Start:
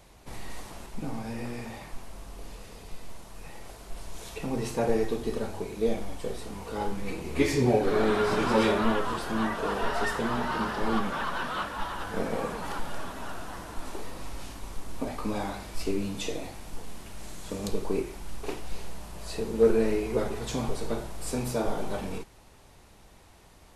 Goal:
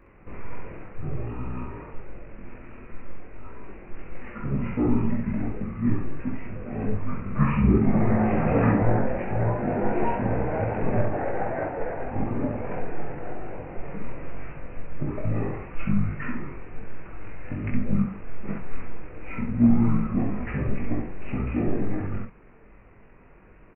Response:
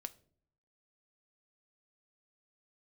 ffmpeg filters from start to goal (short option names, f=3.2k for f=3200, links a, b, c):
-af "aresample=11025,aresample=44100,asetrate=22696,aresample=44100,atempo=1.94306,aecho=1:1:20|64:0.708|0.708,volume=1.5dB"